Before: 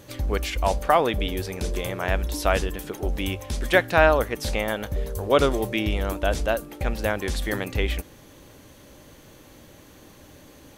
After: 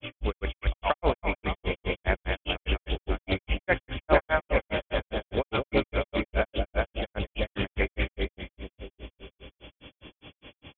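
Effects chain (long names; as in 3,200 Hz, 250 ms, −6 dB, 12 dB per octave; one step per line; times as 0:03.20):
hearing-aid frequency compression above 2,100 Hz 4 to 1
echo with a time of its own for lows and highs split 650 Hz, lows 371 ms, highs 198 ms, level −3 dB
granular cloud 128 ms, grains 4.9 per second, pitch spread up and down by 0 semitones
highs frequency-modulated by the lows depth 0.21 ms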